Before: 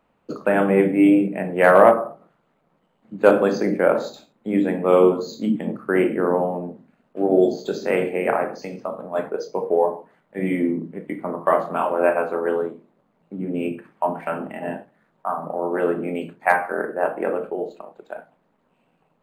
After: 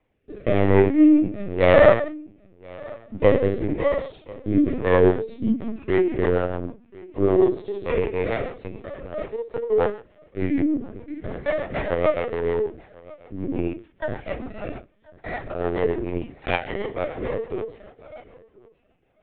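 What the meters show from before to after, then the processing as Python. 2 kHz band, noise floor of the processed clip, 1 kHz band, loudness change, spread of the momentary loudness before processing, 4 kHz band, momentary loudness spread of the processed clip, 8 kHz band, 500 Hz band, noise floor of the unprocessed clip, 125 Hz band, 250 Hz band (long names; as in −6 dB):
−3.5 dB, −61 dBFS, −7.0 dB, −1.5 dB, 16 LU, +2.0 dB, 19 LU, can't be measured, −1.5 dB, −67 dBFS, +4.5 dB, −0.5 dB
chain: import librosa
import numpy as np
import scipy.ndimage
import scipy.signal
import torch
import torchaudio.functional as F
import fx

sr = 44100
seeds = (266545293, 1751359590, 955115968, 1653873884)

y = fx.lower_of_two(x, sr, delay_ms=0.37)
y = y + 10.0 ** (-22.5 / 20.0) * np.pad(y, (int(1035 * sr / 1000.0), 0))[:len(y)]
y = fx.hpss(y, sr, part='percussive', gain_db=-10)
y = fx.dynamic_eq(y, sr, hz=1900.0, q=7.6, threshold_db=-48.0, ratio=4.0, max_db=4)
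y = scipy.signal.sosfilt(scipy.signal.butter(2, 160.0, 'highpass', fs=sr, output='sos'), y)
y = fx.lpc_vocoder(y, sr, seeds[0], excitation='pitch_kept', order=16)
y = fx.rotary_switch(y, sr, hz=0.9, then_hz=6.7, switch_at_s=4.53)
y = y * 10.0 ** (3.5 / 20.0)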